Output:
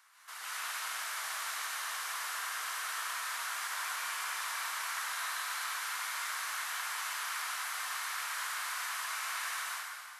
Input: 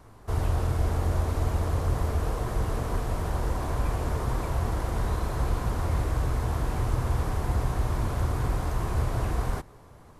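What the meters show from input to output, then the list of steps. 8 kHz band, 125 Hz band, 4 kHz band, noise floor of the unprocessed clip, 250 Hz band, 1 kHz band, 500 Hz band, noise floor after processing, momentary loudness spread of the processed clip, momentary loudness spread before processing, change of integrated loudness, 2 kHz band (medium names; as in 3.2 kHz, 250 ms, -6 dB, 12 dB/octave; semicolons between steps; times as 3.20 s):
+7.5 dB, under -40 dB, +7.5 dB, -51 dBFS, under -40 dB, -3.5 dB, -24.0 dB, -47 dBFS, 1 LU, 3 LU, -7.0 dB, +6.5 dB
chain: high-pass 1.4 kHz 24 dB/octave; plate-style reverb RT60 2 s, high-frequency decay 0.9×, pre-delay 110 ms, DRR -6.5 dB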